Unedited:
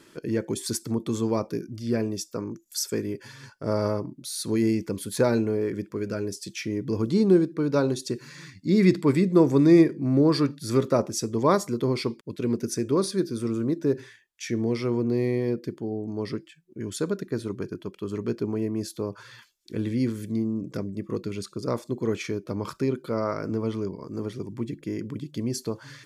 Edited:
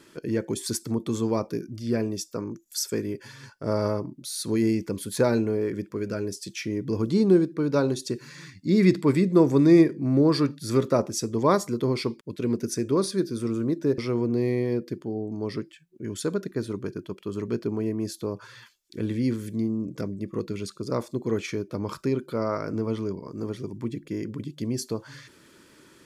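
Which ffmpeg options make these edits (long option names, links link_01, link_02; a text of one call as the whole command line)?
ffmpeg -i in.wav -filter_complex "[0:a]asplit=2[link_01][link_02];[link_01]atrim=end=13.982[link_03];[link_02]atrim=start=14.738[link_04];[link_03][link_04]acrossfade=duration=0.004:curve1=hsin:curve2=hsin" out.wav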